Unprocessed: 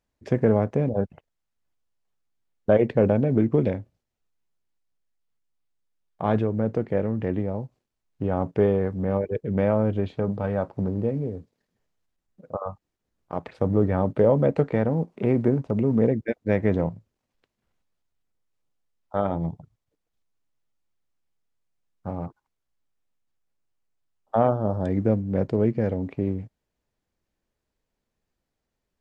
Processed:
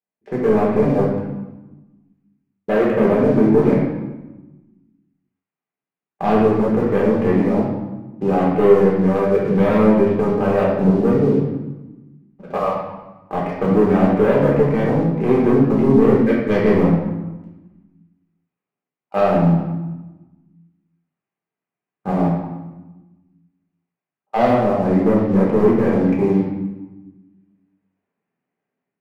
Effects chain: Chebyshev band-pass 160–2400 Hz, order 3; level rider gain up to 13 dB; waveshaping leveller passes 2; reverberation RT60 1.1 s, pre-delay 5 ms, DRR -5.5 dB; trim -12 dB

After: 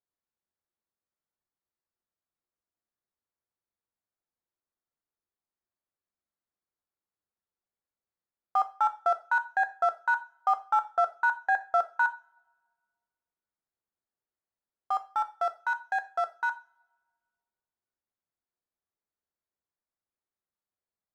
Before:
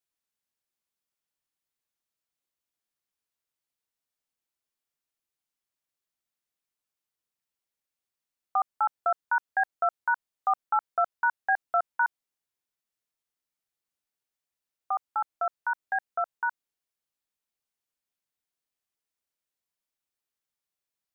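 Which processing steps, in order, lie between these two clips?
local Wiener filter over 15 samples; two-slope reverb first 0.34 s, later 1.6 s, from -28 dB, DRR 9 dB

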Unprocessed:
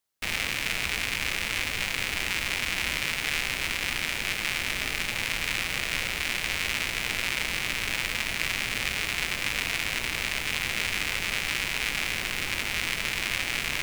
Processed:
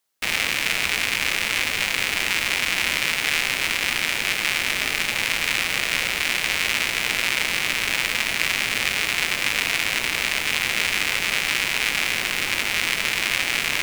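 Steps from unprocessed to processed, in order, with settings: bass shelf 130 Hz -11.5 dB; trim +6.5 dB

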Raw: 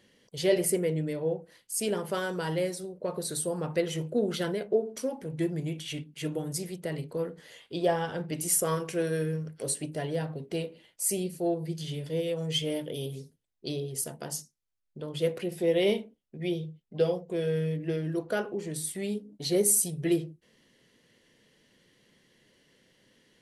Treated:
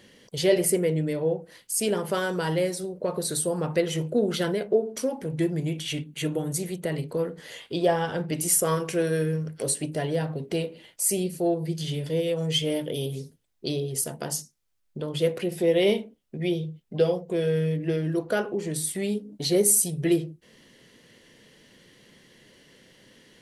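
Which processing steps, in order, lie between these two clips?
6.02–6.95 s: band-stop 5.1 kHz, Q 5.5; in parallel at +1.5 dB: compression, threshold -42 dBFS, peak gain reduction 21 dB; on the sum: trim +2.5 dB

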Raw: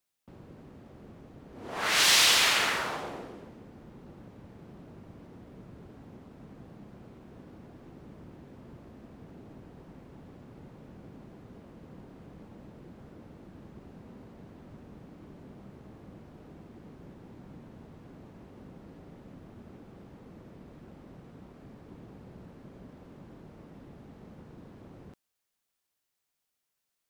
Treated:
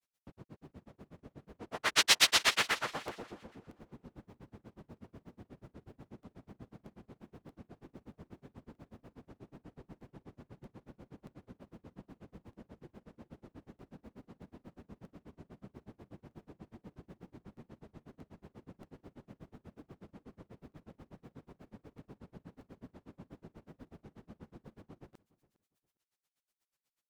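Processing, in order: granulator 81 ms, grains 8.2 per s, spray 20 ms, pitch spread up and down by 0 st; feedback delay 408 ms, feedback 21%, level -21 dB; crackling interface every 0.63 s, samples 64, repeat, from 0.56 s; trim +1 dB

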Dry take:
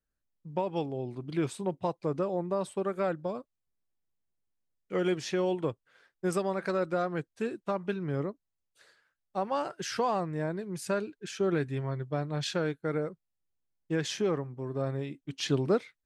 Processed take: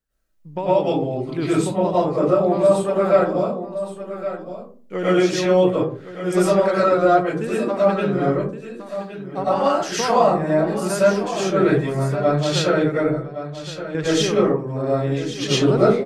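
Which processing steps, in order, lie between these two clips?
12.97–13.95 s: level held to a coarse grid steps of 13 dB; on a send: delay 1117 ms -11.5 dB; on the sum: algorithmic reverb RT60 0.44 s, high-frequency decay 0.35×, pre-delay 70 ms, DRR -9 dB; trim +3.5 dB

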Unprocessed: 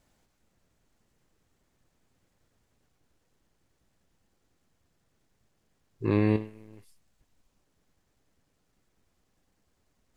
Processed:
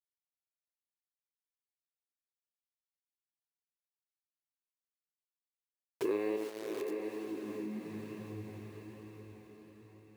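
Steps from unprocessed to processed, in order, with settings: level rider gain up to 10.5 dB; bit crusher 7-bit; bass shelf 360 Hz -5.5 dB; peak limiter -15 dBFS, peak gain reduction 10 dB; echo that smears into a reverb 737 ms, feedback 46%, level -11.5 dB; high-pass sweep 410 Hz -> 69 Hz, 7.00–8.97 s; compression 2.5:1, threshold -48 dBFS, peak gain reduction 18 dB; flange 1.1 Hz, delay 4.9 ms, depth 9.9 ms, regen +71%; trim +12 dB

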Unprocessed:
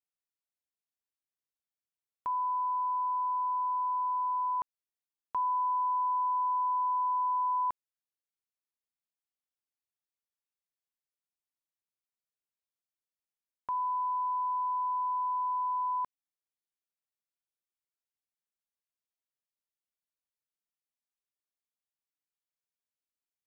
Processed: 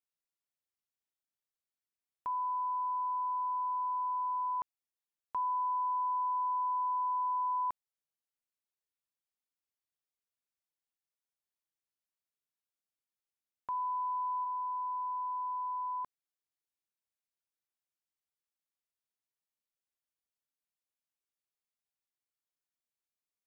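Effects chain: 14.44–16.03 s: low-pass 1.2 kHz -> 1.1 kHz 12 dB/octave; trim -3 dB

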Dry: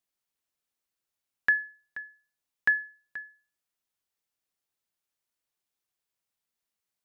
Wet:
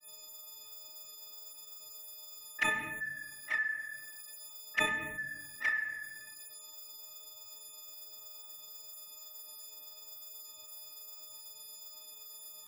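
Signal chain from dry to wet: partials quantised in pitch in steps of 6 st; peaking EQ 300 Hz +7 dB 2.6 oct; band-stop 420 Hz, Q 12; granular stretch 1.8×, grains 95 ms; touch-sensitive flanger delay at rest 11.5 ms, full sweep at -28.5 dBFS; granulator 245 ms, grains 8.1 per s, spray 16 ms, pitch spread up and down by 0 st; simulated room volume 140 m³, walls mixed, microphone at 0.37 m; level flattener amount 50%; trim +6 dB

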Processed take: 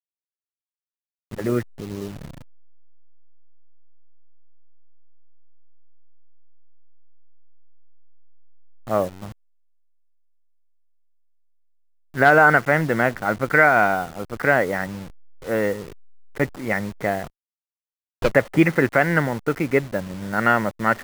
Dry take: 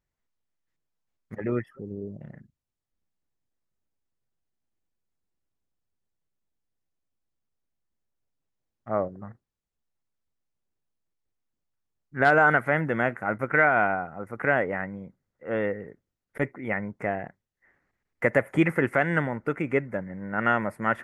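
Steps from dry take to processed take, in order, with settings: send-on-delta sampling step -39 dBFS; 17.23–18.33 s: sliding maximum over 17 samples; trim +5.5 dB

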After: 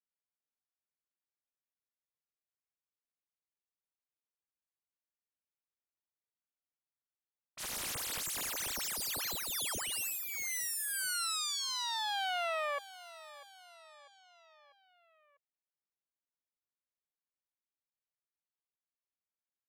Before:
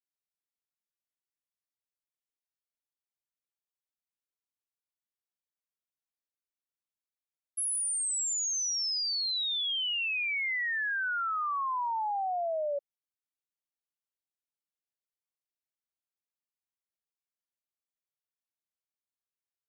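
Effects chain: self-modulated delay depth 0.76 ms; level-controlled noise filter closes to 2.3 kHz, open at -30 dBFS; feedback delay 646 ms, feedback 52%, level -17.5 dB; trim -4.5 dB

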